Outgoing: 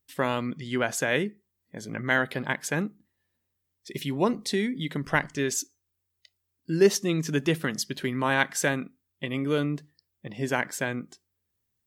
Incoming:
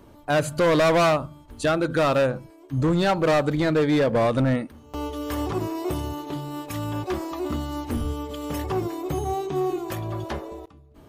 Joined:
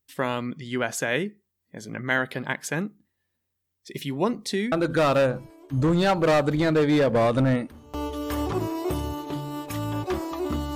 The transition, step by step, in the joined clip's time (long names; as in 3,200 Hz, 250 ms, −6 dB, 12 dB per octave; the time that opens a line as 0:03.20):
outgoing
0:04.72: continue with incoming from 0:01.72